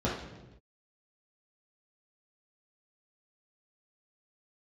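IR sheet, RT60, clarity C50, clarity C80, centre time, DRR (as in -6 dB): not exponential, 3.0 dB, 7.0 dB, 51 ms, -7.5 dB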